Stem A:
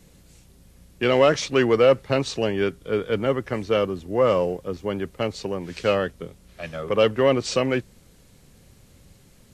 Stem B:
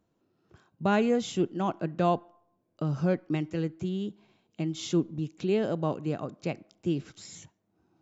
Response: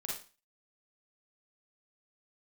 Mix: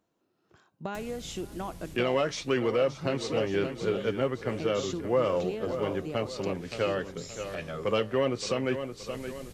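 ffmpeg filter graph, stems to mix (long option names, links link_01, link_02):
-filter_complex "[0:a]acompressor=mode=upward:threshold=-29dB:ratio=2.5,flanger=delay=7:depth=1.3:regen=-68:speed=0.36:shape=triangular,adelay=950,volume=-0.5dB,asplit=2[link_01][link_02];[link_02]volume=-11.5dB[link_03];[1:a]lowshelf=frequency=240:gain=-10.5,acompressor=threshold=-34dB:ratio=5,volume=1dB,asplit=2[link_04][link_05];[link_05]volume=-20.5dB[link_06];[link_03][link_06]amix=inputs=2:normalize=0,aecho=0:1:572|1144|1716|2288|2860|3432:1|0.45|0.202|0.0911|0.041|0.0185[link_07];[link_01][link_04][link_07]amix=inputs=3:normalize=0,alimiter=limit=-16.5dB:level=0:latency=1:release=303"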